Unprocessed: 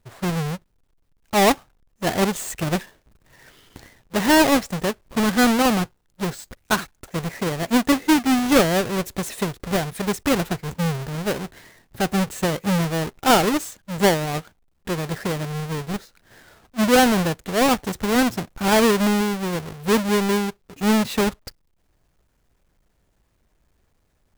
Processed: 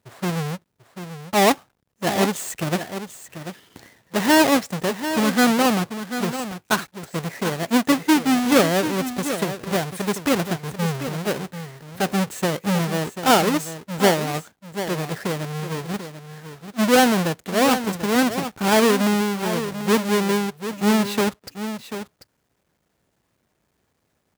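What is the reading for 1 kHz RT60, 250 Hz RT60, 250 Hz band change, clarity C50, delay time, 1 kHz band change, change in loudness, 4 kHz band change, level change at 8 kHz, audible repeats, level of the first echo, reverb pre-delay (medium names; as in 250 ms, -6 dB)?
no reverb, no reverb, 0.0 dB, no reverb, 740 ms, +0.5 dB, 0.0 dB, +0.5 dB, +0.5 dB, 1, -10.5 dB, no reverb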